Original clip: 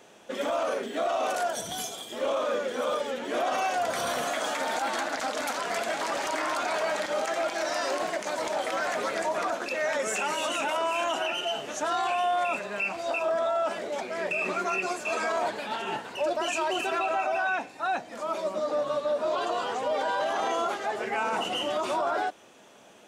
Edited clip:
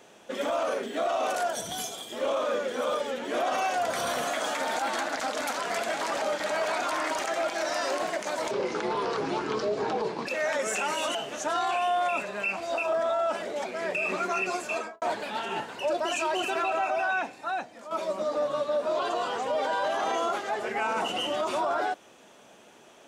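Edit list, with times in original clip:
0:06.22–0:07.24: reverse
0:08.51–0:09.67: play speed 66%
0:10.55–0:11.51: remove
0:15.06–0:15.38: fade out and dull
0:17.67–0:18.27: fade out, to −10 dB

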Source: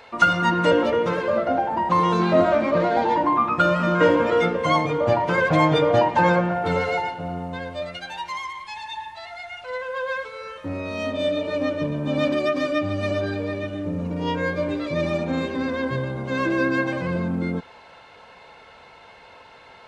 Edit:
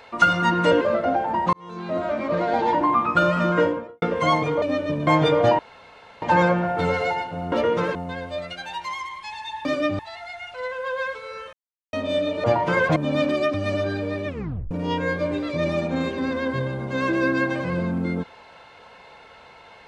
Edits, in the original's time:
0:00.81–0:01.24: move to 0:07.39
0:01.96–0:03.15: fade in
0:03.85–0:04.45: fade out and dull
0:05.05–0:05.57: swap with 0:11.54–0:11.99
0:06.09: splice in room tone 0.63 s
0:10.63–0:11.03: silence
0:12.57–0:12.91: move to 0:09.09
0:13.64: tape stop 0.44 s

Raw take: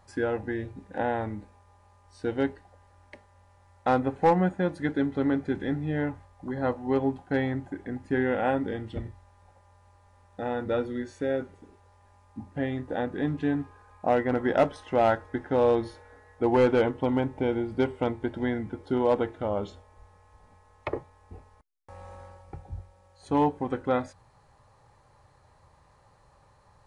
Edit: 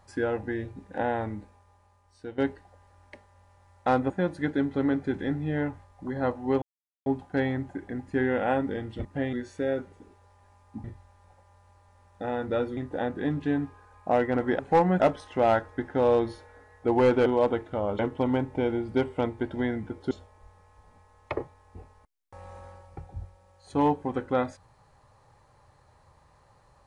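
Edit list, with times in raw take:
0:01.38–0:02.38: fade out, to −11.5 dB
0:04.10–0:04.51: move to 0:14.56
0:07.03: splice in silence 0.44 s
0:09.02–0:10.95: swap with 0:12.46–0:12.74
0:18.94–0:19.67: move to 0:16.82

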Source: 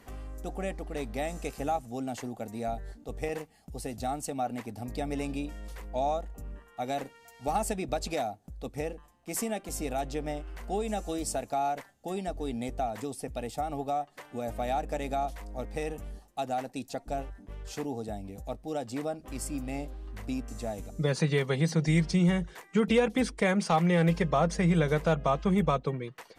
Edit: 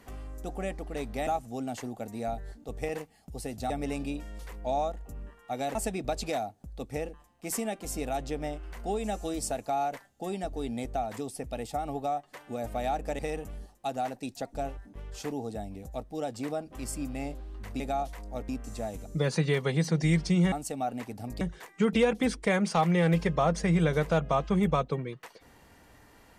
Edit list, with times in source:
0:01.27–0:01.67: remove
0:04.10–0:04.99: move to 0:22.36
0:07.04–0:07.59: remove
0:15.03–0:15.72: move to 0:20.33

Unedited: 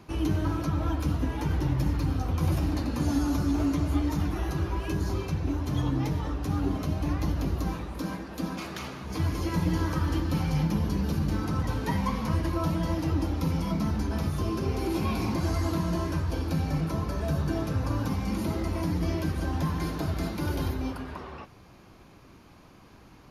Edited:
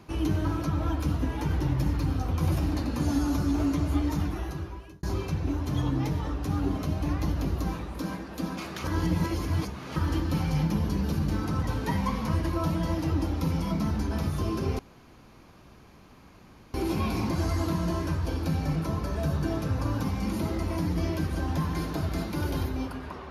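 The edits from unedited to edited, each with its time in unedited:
0:04.17–0:05.03: fade out
0:08.84–0:09.96: reverse
0:14.79: splice in room tone 1.95 s

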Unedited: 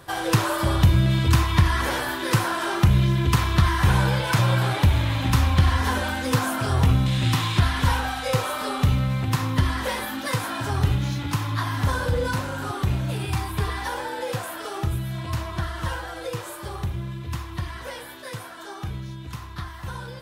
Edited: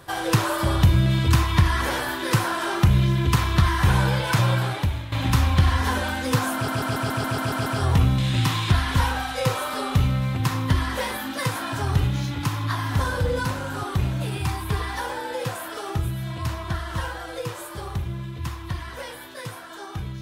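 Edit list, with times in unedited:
0:04.47–0:05.12: fade out linear, to −14 dB
0:06.54: stutter 0.14 s, 9 plays

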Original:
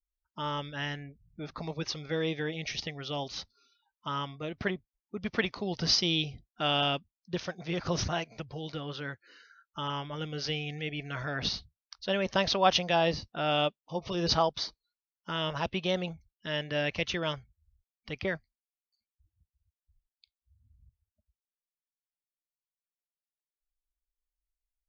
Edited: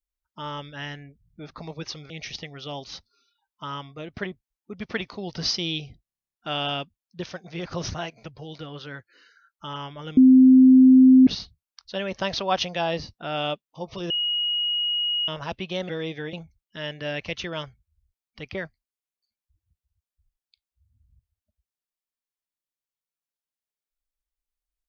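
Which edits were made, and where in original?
0:02.10–0:02.54: move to 0:16.03
0:06.47: stutter 0.03 s, 11 plays
0:10.31–0:11.41: beep over 259 Hz −9 dBFS
0:14.24–0:15.42: beep over 2,890 Hz −22 dBFS

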